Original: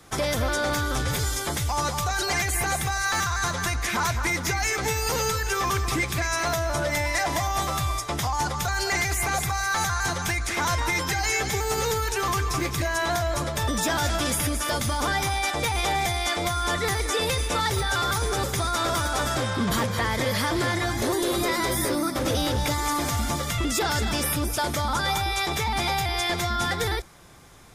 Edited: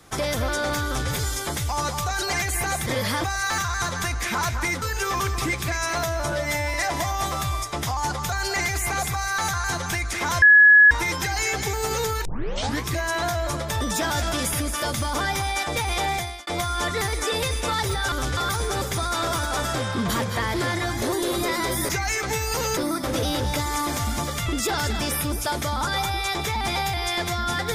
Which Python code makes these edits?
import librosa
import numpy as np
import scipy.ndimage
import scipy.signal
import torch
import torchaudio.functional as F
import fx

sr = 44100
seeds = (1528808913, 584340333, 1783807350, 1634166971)

y = fx.edit(x, sr, fx.duplicate(start_s=0.85, length_s=0.25, to_s=17.99),
    fx.move(start_s=4.44, length_s=0.88, to_s=21.89),
    fx.stretch_span(start_s=6.82, length_s=0.28, factor=1.5),
    fx.insert_tone(at_s=10.78, length_s=0.49, hz=1690.0, db=-8.5),
    fx.tape_start(start_s=12.12, length_s=0.6),
    fx.fade_out_span(start_s=15.99, length_s=0.35),
    fx.move(start_s=20.16, length_s=0.38, to_s=2.86), tone=tone)